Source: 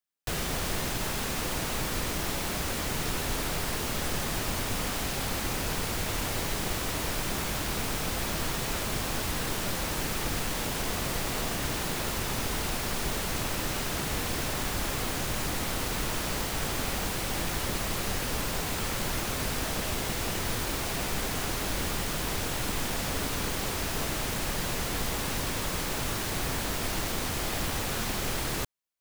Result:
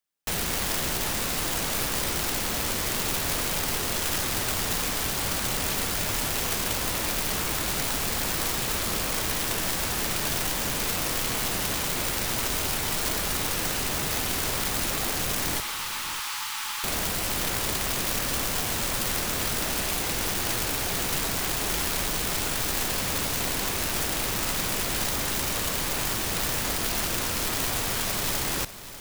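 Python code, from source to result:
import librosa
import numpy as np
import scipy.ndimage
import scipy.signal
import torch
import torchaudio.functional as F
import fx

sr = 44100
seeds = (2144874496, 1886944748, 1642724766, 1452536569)

y = fx.cheby_ripple_highpass(x, sr, hz=830.0, ripple_db=3, at=(15.6, 16.84))
y = (np.mod(10.0 ** (25.0 / 20.0) * y + 1.0, 2.0) - 1.0) / 10.0 ** (25.0 / 20.0)
y = fx.echo_feedback(y, sr, ms=595, feedback_pct=27, wet_db=-14)
y = F.gain(torch.from_numpy(y), 3.5).numpy()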